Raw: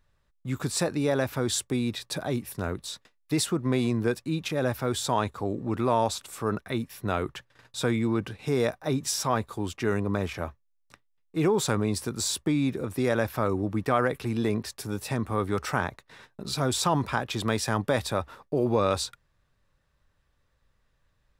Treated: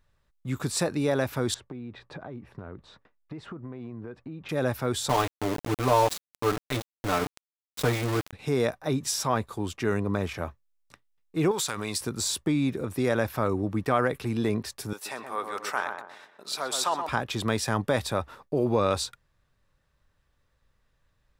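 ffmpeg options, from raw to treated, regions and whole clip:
ffmpeg -i in.wav -filter_complex "[0:a]asettb=1/sr,asplit=3[link_01][link_02][link_03];[link_01]atrim=end=1.544[link_04];[link_02]atrim=start=1.54:end=4.49,asetpts=PTS-STARTPTS,afade=type=in:duration=0.004:curve=qsin,afade=type=out:start_time=2.946:duration=0.004:curve=qsin,lowpass=1600,acompressor=threshold=-35dB:ratio=10:attack=3.2:release=140:knee=1:detection=peak[link_05];[link_03]atrim=start=4.486[link_06];[link_04][link_05]acrossfade=duration=0.004:curve1=hsin:curve2=qsin[link_07];[link_07][link_06]acrossfade=duration=0.004:curve1=qsin:curve2=hsin,asettb=1/sr,asplit=3[link_08][link_09][link_10];[link_08]atrim=end=5.094[link_11];[link_09]atrim=start=5.09:end=8.33,asetpts=PTS-STARTPTS,afade=type=in:duration=0.004:curve=qsin,afade=type=out:start_time=3.236:duration=0.004:curve=qsin,aecho=1:1:6.8:0.83,atrim=end_sample=142884,aeval=exprs='val(0)*gte(abs(val(0)),0.0473)':channel_layout=same[link_12];[link_10]atrim=start=8.326[link_13];[link_11][link_12]acrossfade=duration=0.004:curve1=hsin:curve2=qsin[link_14];[link_14][link_13]acrossfade=duration=0.004:curve1=qsin:curve2=hsin,asettb=1/sr,asplit=3[link_15][link_16][link_17];[link_15]atrim=end=11.514[link_18];[link_16]atrim=start=11.51:end=12.01,asetpts=PTS-STARTPTS,afade=type=in:duration=0.004:curve=qsin,afade=type=out:start_time=0.496:duration=0.004:curve=qsin,tiltshelf=frequency=800:gain=-9,acompressor=threshold=-25dB:ratio=6:attack=3.2:release=140:knee=1:detection=peak,aeval=exprs='sgn(val(0))*max(abs(val(0))-0.00119,0)':channel_layout=same[link_19];[link_17]atrim=start=12.006[link_20];[link_18][link_19]acrossfade=duration=0.004:curve1=hsin:curve2=qsin[link_21];[link_21][link_20]acrossfade=duration=0.004:curve1=qsin:curve2=hsin,asettb=1/sr,asplit=3[link_22][link_23][link_24];[link_22]atrim=end=14.934[link_25];[link_23]atrim=start=14.93:end=17.09,asetpts=PTS-STARTPTS,afade=type=in:duration=0.004:curve=qsin,afade=type=out:start_time=2.156:duration=0.004:curve=qsin,highpass=650,asplit=2[link_26][link_27];[link_27]adelay=124,lowpass=frequency=1100:poles=1,volume=-4dB,asplit=2[link_28][link_29];[link_29]adelay=124,lowpass=frequency=1100:poles=1,volume=0.47,asplit=2[link_30][link_31];[link_31]adelay=124,lowpass=frequency=1100:poles=1,volume=0.47,asplit=2[link_32][link_33];[link_33]adelay=124,lowpass=frequency=1100:poles=1,volume=0.47,asplit=2[link_34][link_35];[link_35]adelay=124,lowpass=frequency=1100:poles=1,volume=0.47,asplit=2[link_36][link_37];[link_37]adelay=124,lowpass=frequency=1100:poles=1,volume=0.47[link_38];[link_26][link_28][link_30][link_32][link_34][link_36][link_38]amix=inputs=7:normalize=0,atrim=end_sample=95256[link_39];[link_24]atrim=start=17.086[link_40];[link_25][link_39]acrossfade=duration=0.004:curve1=hsin:curve2=qsin[link_41];[link_41][link_40]acrossfade=duration=0.004:curve1=qsin:curve2=hsin" out.wav

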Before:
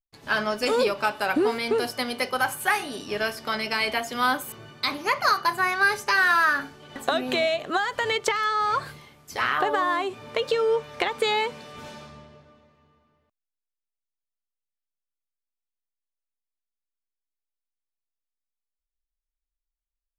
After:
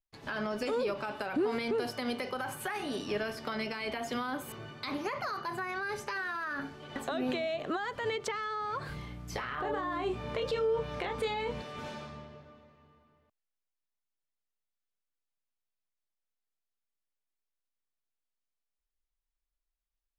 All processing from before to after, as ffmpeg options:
ffmpeg -i in.wav -filter_complex "[0:a]asettb=1/sr,asplit=3[link_01][link_02][link_03];[link_01]atrim=end=8.894[link_04];[link_02]atrim=start=8.89:end=11.62,asetpts=PTS-STARTPTS,afade=type=in:duration=0.004:curve=qsin,afade=type=out:start_time=2.726:duration=0.004:curve=qsin,aeval=exprs='val(0)+0.00794*(sin(2*PI*60*n/s)+sin(2*PI*2*60*n/s)/2+sin(2*PI*3*60*n/s)/3+sin(2*PI*4*60*n/s)/4+sin(2*PI*5*60*n/s)/5)':channel_layout=same,asplit=2[link_05][link_06];[link_06]adelay=27,volume=-6dB[link_07];[link_05][link_07]amix=inputs=2:normalize=0,atrim=end_sample=120393[link_08];[link_03]atrim=start=11.616[link_09];[link_04][link_08]acrossfade=duration=0.004:curve1=hsin:curve2=qsin[link_10];[link_10][link_09]acrossfade=duration=0.004:curve1=qsin:curve2=hsin,highshelf=frequency=6100:gain=-10.5,alimiter=limit=-22.5dB:level=0:latency=1:release=45,acrossover=split=500[link_11][link_12];[link_12]acompressor=threshold=-37dB:ratio=2.5[link_13];[link_11][link_13]amix=inputs=2:normalize=0" out.wav

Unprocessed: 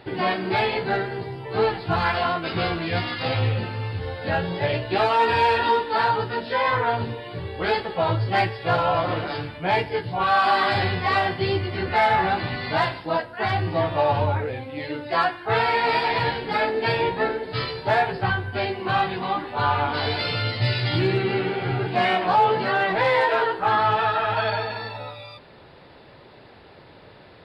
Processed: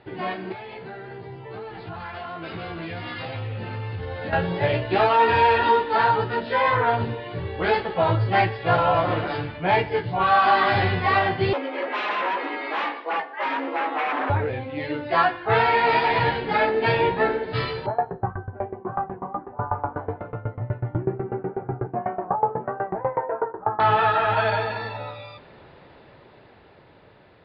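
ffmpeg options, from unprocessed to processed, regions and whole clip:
ffmpeg -i in.wav -filter_complex "[0:a]asettb=1/sr,asplit=3[link_01][link_02][link_03];[link_01]atrim=end=0.524[link_04];[link_02]atrim=start=0.52:end=4.33,asetpts=PTS-STARTPTS,afade=type=in:duration=0.004:curve=qsin,afade=type=out:start_time=3.806:duration=0.004:curve=qsin,highpass=44,acompressor=threshold=-28dB:ratio=10:attack=3.2:release=140:knee=1:detection=peak[link_05];[link_03]atrim=start=4.326[link_06];[link_04][link_05]acrossfade=duration=0.004:curve1=hsin:curve2=qsin[link_07];[link_07][link_06]acrossfade=duration=0.004:curve1=qsin:curve2=hsin,asettb=1/sr,asplit=3[link_08][link_09][link_10];[link_08]atrim=end=11.534[link_11];[link_09]atrim=start=11.53:end=14.3,asetpts=PTS-STARTPTS,afade=type=in:duration=0.004:curve=qsin,afade=type=out:start_time=2.766:duration=0.004:curve=qsin,aeval=exprs='0.0944*(abs(mod(val(0)/0.0944+3,4)-2)-1)':channel_layout=same,afreqshift=170,highpass=400,lowpass=2800[link_12];[link_10]atrim=start=14.296[link_13];[link_11][link_12]acrossfade=duration=0.004:curve1=hsin:curve2=qsin[link_14];[link_14][link_13]acrossfade=duration=0.004:curve1=qsin:curve2=hsin,asettb=1/sr,asplit=3[link_15][link_16][link_17];[link_15]atrim=end=17.864[link_18];[link_16]atrim=start=17.86:end=23.8,asetpts=PTS-STARTPTS,afade=type=in:duration=0.004:curve=qsin,afade=type=out:start_time=5.936:duration=0.004:curve=qsin,lowpass=frequency=1200:width=0.5412,lowpass=frequency=1200:width=1.3066,aeval=exprs='val(0)*pow(10,-22*if(lt(mod(8.1*n/s,1),2*abs(8.1)/1000),1-mod(8.1*n/s,1)/(2*abs(8.1)/1000),(mod(8.1*n/s,1)-2*abs(8.1)/1000)/(1-2*abs(8.1)/1000))/20)':channel_layout=same[link_19];[link_17]atrim=start=23.796[link_20];[link_18][link_19]acrossfade=duration=0.004:curve1=hsin:curve2=qsin[link_21];[link_21][link_20]acrossfade=duration=0.004:curve1=qsin:curve2=hsin,dynaudnorm=framelen=570:gausssize=9:maxgain=10dB,lowpass=3200,bandreject=frequency=257:width_type=h:width=4,bandreject=frequency=514:width_type=h:width=4,bandreject=frequency=771:width_type=h:width=4,bandreject=frequency=1028:width_type=h:width=4,bandreject=frequency=1285:width_type=h:width=4,bandreject=frequency=1542:width_type=h:width=4,bandreject=frequency=1799:width_type=h:width=4,bandreject=frequency=2056:width_type=h:width=4,bandreject=frequency=2313:width_type=h:width=4,bandreject=frequency=2570:width_type=h:width=4,bandreject=frequency=2827:width_type=h:width=4,bandreject=frequency=3084:width_type=h:width=4,bandreject=frequency=3341:width_type=h:width=4,bandreject=frequency=3598:width_type=h:width=4,bandreject=frequency=3855:width_type=h:width=4,bandreject=frequency=4112:width_type=h:width=4,bandreject=frequency=4369:width_type=h:width=4,bandreject=frequency=4626:width_type=h:width=4,bandreject=frequency=4883:width_type=h:width=4,bandreject=frequency=5140:width_type=h:width=4,bandreject=frequency=5397:width_type=h:width=4,bandreject=frequency=5654:width_type=h:width=4,bandreject=frequency=5911:width_type=h:width=4,bandreject=frequency=6168:width_type=h:width=4,bandreject=frequency=6425:width_type=h:width=4,bandreject=frequency=6682:width_type=h:width=4,bandreject=frequency=6939:width_type=h:width=4,bandreject=frequency=7196:width_type=h:width=4,bandreject=frequency=7453:width_type=h:width=4,bandreject=frequency=7710:width_type=h:width=4,bandreject=frequency=7967:width_type=h:width=4,bandreject=frequency=8224:width_type=h:width=4,bandreject=frequency=8481:width_type=h:width=4,bandreject=frequency=8738:width_type=h:width=4,bandreject=frequency=8995:width_type=h:width=4,bandreject=frequency=9252:width_type=h:width=4,bandreject=frequency=9509:width_type=h:width=4,bandreject=frequency=9766:width_type=h:width=4,volume=-5.5dB" out.wav

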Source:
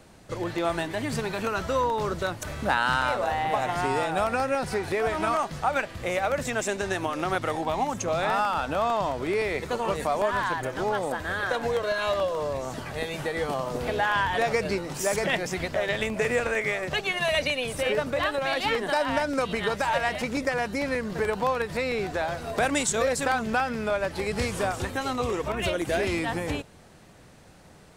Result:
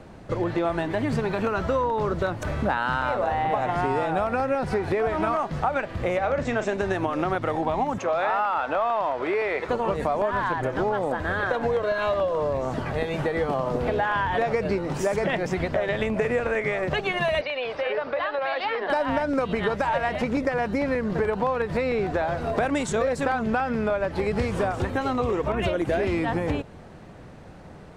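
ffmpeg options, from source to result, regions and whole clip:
ffmpeg -i in.wav -filter_complex "[0:a]asettb=1/sr,asplit=3[link_01][link_02][link_03];[link_01]atrim=end=6.184[link_04];[link_02]atrim=start=6.18:end=6.74,asetpts=PTS-STARTPTS,afade=type=in:duration=0.004:curve=qsin,afade=type=out:start_time=0.556:duration=0.004:curve=qsin,lowpass=frequency=7300:width=0.5412,lowpass=frequency=7300:width=1.3066,asplit=2[link_05][link_06];[link_06]adelay=38,volume=-10dB[link_07];[link_05][link_07]amix=inputs=2:normalize=0,atrim=end_sample=24696[link_08];[link_03]atrim=start=6.736[link_09];[link_04][link_08]acrossfade=duration=0.004:curve1=hsin:curve2=qsin[link_10];[link_10][link_09]acrossfade=duration=0.004:curve1=qsin:curve2=hsin,asettb=1/sr,asplit=3[link_11][link_12][link_13];[link_11]atrim=end=7.984[link_14];[link_12]atrim=start=7.98:end=9.69,asetpts=PTS-STARTPTS,afade=type=in:duration=0.004:curve=qsin,afade=type=out:start_time=1.706:duration=0.004:curve=qsin,highpass=90,asplit=2[link_15][link_16];[link_16]highpass=frequency=720:poles=1,volume=9dB,asoftclip=type=tanh:threshold=-13dB[link_17];[link_15][link_17]amix=inputs=2:normalize=0,lowpass=frequency=2500:poles=1,volume=-6dB,equalizer=frequency=150:width_type=o:width=2.2:gain=-10.5[link_18];[link_13]atrim=start=9.686[link_19];[link_14][link_18]acrossfade=duration=0.004:curve1=hsin:curve2=qsin[link_20];[link_20][link_19]acrossfade=duration=0.004:curve1=qsin:curve2=hsin,asettb=1/sr,asplit=3[link_21][link_22][link_23];[link_21]atrim=end=17.414[link_24];[link_22]atrim=start=17.41:end=18.9,asetpts=PTS-STARTPTS,afade=type=in:duration=0.004:curve=qsin,afade=type=out:start_time=1.486:duration=0.004:curve=qsin,acrossover=split=430 3100:gain=0.1 1 0.1[link_25][link_26][link_27];[link_25][link_26][link_27]amix=inputs=3:normalize=0,acompressor=threshold=-31dB:ratio=2:attack=3.2:release=140:knee=1:detection=peak,lowpass=frequency=4900:width_type=q:width=4.3[link_28];[link_23]atrim=start=18.896[link_29];[link_24][link_28]acrossfade=duration=0.004:curve1=hsin:curve2=qsin[link_30];[link_30][link_29]acrossfade=duration=0.004:curve1=qsin:curve2=hsin,lowpass=frequency=1300:poles=1,acompressor=threshold=-31dB:ratio=3,volume=8.5dB" out.wav

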